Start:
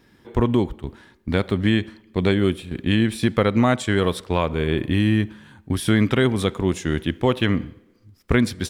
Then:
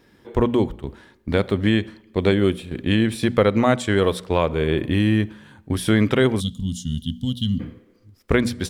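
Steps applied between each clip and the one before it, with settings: spectral gain 6.4–7.6, 260–2800 Hz -30 dB; bell 510 Hz +4 dB 0.78 oct; notches 60/120/180/240 Hz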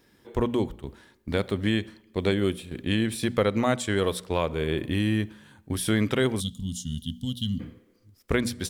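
high shelf 4800 Hz +9 dB; gain -6.5 dB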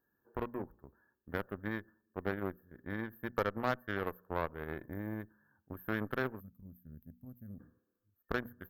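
tilt shelf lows -6 dB, about 1400 Hz; FFT band-reject 1800–12000 Hz; added harmonics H 2 -12 dB, 7 -20 dB, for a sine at -12.5 dBFS; gain -5.5 dB

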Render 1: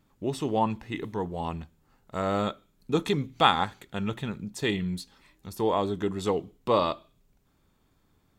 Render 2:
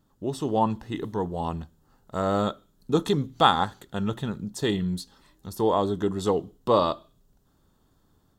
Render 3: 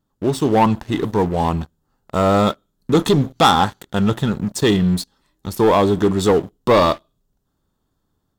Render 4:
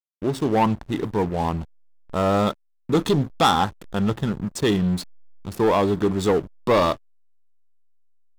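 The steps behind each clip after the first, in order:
bell 2300 Hz -15 dB 0.4 oct; AGC gain up to 3 dB
sample leveller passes 3
backlash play -26.5 dBFS; gain -4.5 dB

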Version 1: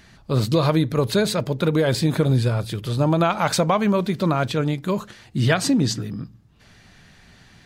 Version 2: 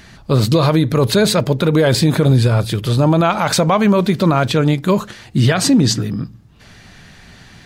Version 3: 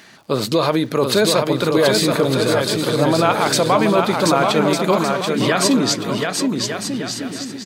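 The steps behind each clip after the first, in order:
limiter -13.5 dBFS, peak gain reduction 9.5 dB; gain +8.5 dB
on a send: bouncing-ball echo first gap 0.73 s, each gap 0.65×, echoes 5; on the sum: crackle 120/s -40 dBFS; HPF 270 Hz 12 dB/oct; gain -1 dB

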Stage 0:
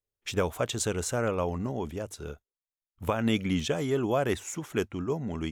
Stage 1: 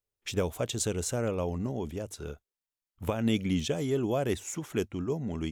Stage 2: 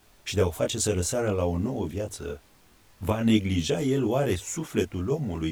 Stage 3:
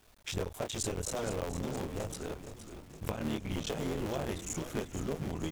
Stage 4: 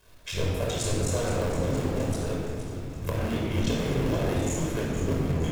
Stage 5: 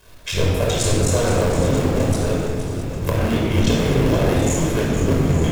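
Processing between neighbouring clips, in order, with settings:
dynamic EQ 1300 Hz, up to -8 dB, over -45 dBFS, Q 0.79
added noise pink -63 dBFS; chorus voices 4, 0.56 Hz, delay 21 ms, depth 2.3 ms; gain +7.5 dB
cycle switcher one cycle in 3, muted; compressor, threshold -28 dBFS, peak gain reduction 11 dB; frequency-shifting echo 0.467 s, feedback 58%, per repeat -80 Hz, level -10.5 dB; gain -3.5 dB
reverb RT60 2.0 s, pre-delay 25 ms, DRR -3 dB
reverse delay 0.619 s, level -13.5 dB; gain +9 dB

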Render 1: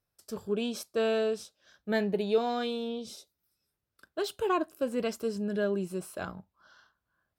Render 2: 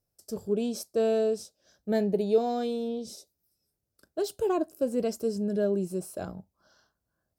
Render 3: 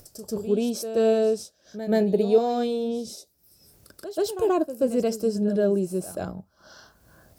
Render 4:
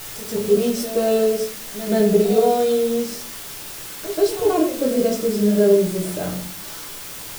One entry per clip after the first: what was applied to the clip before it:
band shelf 1900 Hz -11 dB 2.3 oct; gain +3 dB
pre-echo 0.131 s -12 dB; upward compressor, threshold -40 dBFS; gain +4.5 dB
added noise white -38 dBFS; shoebox room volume 45 m³, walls mixed, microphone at 0.67 m; gain +1 dB

